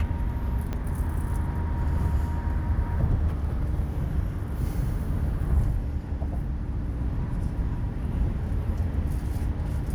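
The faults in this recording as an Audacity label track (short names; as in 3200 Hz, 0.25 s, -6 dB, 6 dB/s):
0.730000	0.730000	pop -19 dBFS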